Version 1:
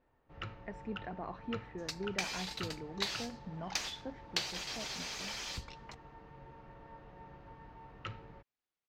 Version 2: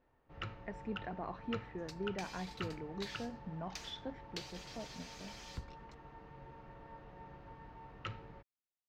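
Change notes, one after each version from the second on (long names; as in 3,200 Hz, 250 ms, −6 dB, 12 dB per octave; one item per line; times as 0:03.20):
second sound −11.5 dB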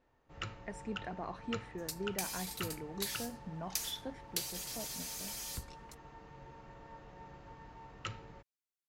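master: remove high-frequency loss of the air 190 metres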